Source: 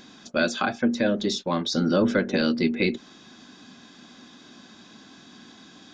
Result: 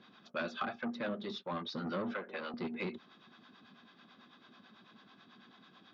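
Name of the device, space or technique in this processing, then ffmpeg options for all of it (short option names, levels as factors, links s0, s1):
guitar amplifier with harmonic tremolo: -filter_complex "[0:a]acrossover=split=530[s0][s1];[s0]aeval=exprs='val(0)*(1-0.7/2+0.7/2*cos(2*PI*9.1*n/s))':c=same[s2];[s1]aeval=exprs='val(0)*(1-0.7/2-0.7/2*cos(2*PI*9.1*n/s))':c=same[s3];[s2][s3]amix=inputs=2:normalize=0,asoftclip=type=tanh:threshold=0.0631,highpass=120,highpass=89,equalizer=f=92:t=q:w=4:g=6,equalizer=f=290:t=q:w=4:g=-7,equalizer=f=1200:t=q:w=4:g=7,lowpass=f=3900:w=0.5412,lowpass=f=3900:w=1.3066,asettb=1/sr,asplit=3[s4][s5][s6];[s4]atrim=end=2.144[s7];[s5]atrim=start=2.14:end=2.54,asetpts=PTS-STARTPTS,afade=t=in:d=0.004:c=qsin,afade=t=out:st=0.396:d=0.004:c=qsin,acrossover=split=390 3800:gain=0.178 1 0.224[s8][s9][s10];[s8][s9][s10]amix=inputs=3:normalize=0[s11];[s6]atrim=start=2.536[s12];[s7][s11]acrossfade=d=0.004:c1=hsin:c2=qsin[s13];[s13][s12]acrossfade=d=0.004:c1=qsin:c2=hsin,volume=0.447"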